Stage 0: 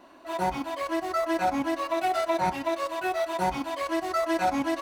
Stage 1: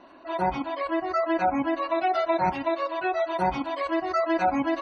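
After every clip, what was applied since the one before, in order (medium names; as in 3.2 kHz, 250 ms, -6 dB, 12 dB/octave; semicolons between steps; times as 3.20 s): spectral gate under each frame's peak -30 dB strong; treble shelf 7.1 kHz -6.5 dB; trim +2 dB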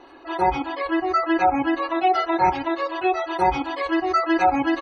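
comb 2.4 ms, depth 76%; trim +3.5 dB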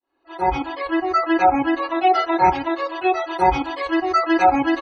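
fade-in on the opening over 0.58 s; three bands expanded up and down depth 40%; trim +2.5 dB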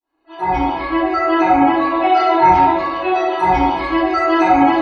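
reverberation RT60 1.2 s, pre-delay 3 ms, DRR -9.5 dB; trim -5.5 dB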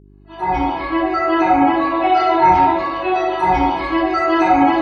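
mains buzz 50 Hz, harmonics 8, -45 dBFS -4 dB/octave; trim -1 dB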